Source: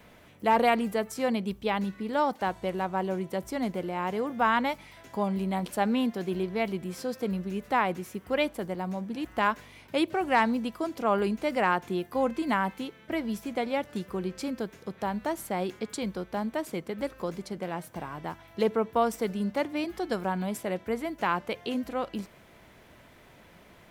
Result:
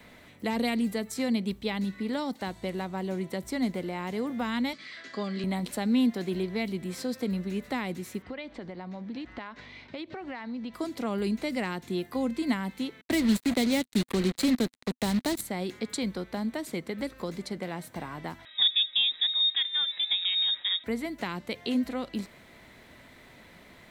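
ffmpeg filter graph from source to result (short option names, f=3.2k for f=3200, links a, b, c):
-filter_complex "[0:a]asettb=1/sr,asplit=3[a][b][c];[a]atrim=end=4.734[d];[b]atrim=start=4.73:end=5.44,asetpts=PTS-STARTPTS,afade=t=in:d=0.004:c=qsin,afade=t=out:st=0.706:d=0.004:c=qsin,asuperstop=centerf=930:order=4:qfactor=3.3,highpass=230,equalizer=f=730:t=q:w=4:g=-6,equalizer=f=1.1k:t=q:w=4:g=9,equalizer=f=1.7k:t=q:w=4:g=9,equalizer=f=3.2k:t=q:w=4:g=4,equalizer=f=4.6k:t=q:w=4:g=9,lowpass=f=7.2k:w=0.5412,lowpass=f=7.2k:w=1.3066[e];[c]atrim=start=5.436[f];[d][e]acrossfade=d=0.004:c1=hsin:c2=qsin[g];[g][f]acrossfade=d=0.004:c1=qsin:c2=hsin,asettb=1/sr,asplit=3[h][i][j];[h]atrim=end=8.224[k];[i]atrim=start=8.22:end=10.74,asetpts=PTS-STARTPTS,afade=t=in:d=0.004:c=qsin,afade=t=out:st=2.516:d=0.004:c=qsin,lowpass=f=5.3k:w=0.5412,lowpass=f=5.3k:w=1.3066,acompressor=threshold=-36dB:ratio=10:attack=3.2:release=140:knee=1:detection=peak[l];[j]atrim=start=10.736[m];[k][l]acrossfade=d=0.004:c1=hsin:c2=qsin[n];[n][m]acrossfade=d=0.004:c1=qsin:c2=hsin,asettb=1/sr,asplit=3[o][p][q];[o]atrim=end=13.014[r];[p]atrim=start=13.01:end=15.41,asetpts=PTS-STARTPTS,afade=t=in:d=0.004:c=qsin,afade=t=out:st=2.396:d=0.004:c=qsin,acontrast=72,asuperstop=centerf=5500:order=4:qfactor=4.2,acrusher=bits=4:mix=0:aa=0.5[s];[q]atrim=start=15.406[t];[r][s]acrossfade=d=0.004:c1=hsin:c2=qsin[u];[u][t]acrossfade=d=0.004:c1=qsin:c2=hsin,asettb=1/sr,asplit=3[v][w][x];[v]atrim=end=18.454[y];[w]atrim=start=18.45:end=20.84,asetpts=PTS-STARTPTS,afade=t=in:d=0.004:c=qsin,afade=t=out:st=2.386:d=0.004:c=qsin,equalizer=f=930:w=3.9:g=-13.5,lowpass=f=3.3k:t=q:w=0.5098,lowpass=f=3.3k:t=q:w=0.6013,lowpass=f=3.3k:t=q:w=0.9,lowpass=f=3.3k:t=q:w=2.563,afreqshift=-3900[z];[x]atrim=start=20.836[aa];[y][z]acrossfade=d=0.004:c1=hsin:c2=qsin[ab];[ab][aa]acrossfade=d=0.004:c1=qsin:c2=hsin,equalizer=f=250:t=o:w=0.33:g=5,equalizer=f=2k:t=o:w=0.33:g=7,equalizer=f=4k:t=o:w=0.33:g=8,equalizer=f=8k:t=o:w=0.33:g=4,acrossover=split=370|3000[ac][ad][ae];[ad]acompressor=threshold=-35dB:ratio=6[af];[ac][af][ae]amix=inputs=3:normalize=0"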